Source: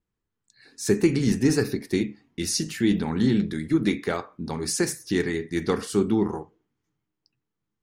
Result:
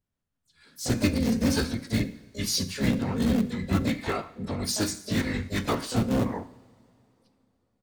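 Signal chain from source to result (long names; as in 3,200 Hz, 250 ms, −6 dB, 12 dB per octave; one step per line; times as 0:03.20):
dynamic equaliser 4,600 Hz, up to +8 dB, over −53 dBFS, Q 6.6
phase-vocoder pitch shift with formants kept −9 semitones
in parallel at −11 dB: wrap-around overflow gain 17.5 dB
on the sum: pitch-shifted copies added −3 semitones −7 dB, +12 semitones −10 dB
coupled-rooms reverb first 0.65 s, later 3.3 s, from −19 dB, DRR 12 dB
level −4 dB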